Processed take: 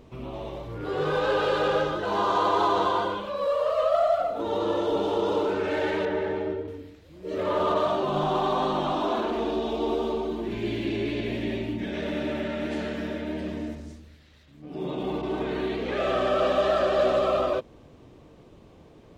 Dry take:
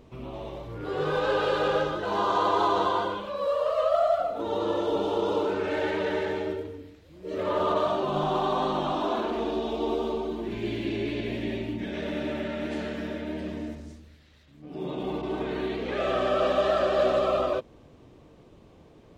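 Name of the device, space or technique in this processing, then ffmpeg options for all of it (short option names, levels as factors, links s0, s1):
parallel distortion: -filter_complex "[0:a]asplit=2[s0][s1];[s1]asoftclip=type=hard:threshold=0.0422,volume=0.237[s2];[s0][s2]amix=inputs=2:normalize=0,asettb=1/sr,asplit=3[s3][s4][s5];[s3]atrim=end=6.054[s6];[s4]atrim=start=6.05:end=6.68,asetpts=PTS-STARTPTS,afade=t=in:d=0.004:c=qsin,afade=t=out:st=0.626:d=0.004:c=qsin,lowpass=f=1600:p=1[s7];[s5]atrim=start=6.676[s8];[s6][s7]acrossfade=d=0.004:c1=hsin:c2=qsin[s9];[s9][s8]acrossfade=d=0.004:c1=qsin:c2=hsin"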